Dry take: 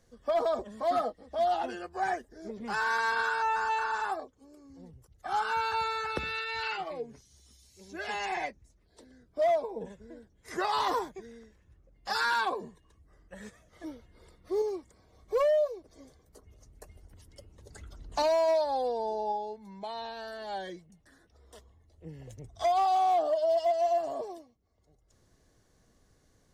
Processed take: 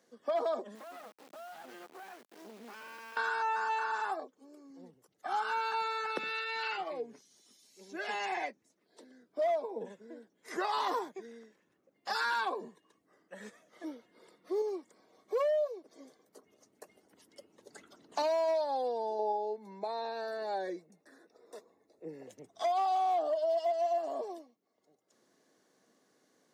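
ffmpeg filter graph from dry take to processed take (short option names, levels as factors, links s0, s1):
-filter_complex "[0:a]asettb=1/sr,asplit=3[s0][s1][s2];[s0]atrim=end=0.754[s3];[s1]atrim=start=0.75:end=3.17,asetpts=PTS-STARTPTS,afade=t=in:d=0.004:c=qsin,afade=t=out:st=2.416:d=0.004:c=qsin,acompressor=threshold=0.00891:ratio=8:attack=3.2:release=140:knee=1:detection=peak,acrusher=bits=6:dc=4:mix=0:aa=0.000001[s4];[s2]atrim=start=3.166[s5];[s3][s4]acrossfade=d=0.004:c1=hsin:c2=qsin[s6];[s6][s5]acrossfade=d=0.004:c1=qsin:c2=hsin,asettb=1/sr,asplit=3[s7][s8][s9];[s7]atrim=end=19.194[s10];[s8]atrim=start=19.19:end=22.27,asetpts=PTS-STARTPTS,afade=t=in:d=0.004:c=qsin,afade=t=out:st=3.076:d=0.004:c=qsin,asuperstop=centerf=3100:order=8:qfactor=4.6,equalizer=f=460:t=o:w=1.2:g=7[s11];[s9]atrim=start=22.266[s12];[s10][s11]acrossfade=d=0.004:c1=hsin:c2=qsin[s13];[s13][s12]acrossfade=d=0.004:c1=qsin:c2=hsin,highpass=f=220:w=0.5412,highpass=f=220:w=1.3066,equalizer=f=9400:t=o:w=1.7:g=-3,acompressor=threshold=0.0178:ratio=1.5"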